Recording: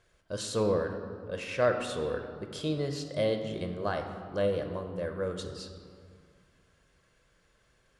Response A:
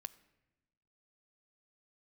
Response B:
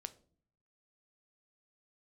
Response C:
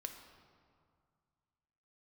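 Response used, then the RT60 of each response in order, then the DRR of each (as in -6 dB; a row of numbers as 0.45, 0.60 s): C; 1.0 s, not exponential, 2.1 s; 14.0, 11.0, 5.0 dB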